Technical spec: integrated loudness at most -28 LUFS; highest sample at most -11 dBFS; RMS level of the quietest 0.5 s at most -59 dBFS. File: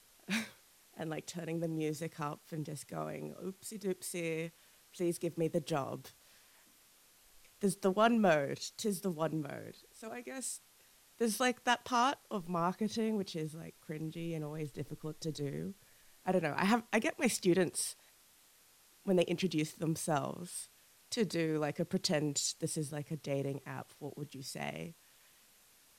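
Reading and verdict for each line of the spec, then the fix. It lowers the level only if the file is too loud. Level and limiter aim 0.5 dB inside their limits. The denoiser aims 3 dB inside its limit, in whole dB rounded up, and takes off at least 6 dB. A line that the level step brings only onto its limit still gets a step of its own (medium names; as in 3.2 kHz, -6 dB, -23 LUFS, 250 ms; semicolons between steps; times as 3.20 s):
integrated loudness -36.0 LUFS: pass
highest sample -15.5 dBFS: pass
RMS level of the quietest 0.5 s -65 dBFS: pass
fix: none needed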